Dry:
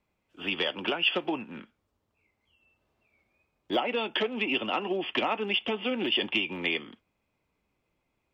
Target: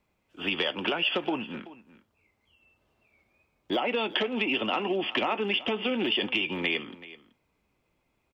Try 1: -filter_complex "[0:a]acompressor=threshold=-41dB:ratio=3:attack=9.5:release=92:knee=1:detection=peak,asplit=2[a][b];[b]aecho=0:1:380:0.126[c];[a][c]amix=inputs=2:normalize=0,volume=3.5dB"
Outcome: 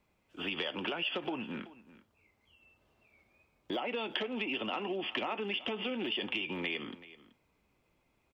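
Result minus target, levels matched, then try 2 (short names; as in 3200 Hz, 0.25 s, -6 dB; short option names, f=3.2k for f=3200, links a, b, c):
compressor: peak gain reduction +8 dB
-filter_complex "[0:a]acompressor=threshold=-29dB:ratio=3:attack=9.5:release=92:knee=1:detection=peak,asplit=2[a][b];[b]aecho=0:1:380:0.126[c];[a][c]amix=inputs=2:normalize=0,volume=3.5dB"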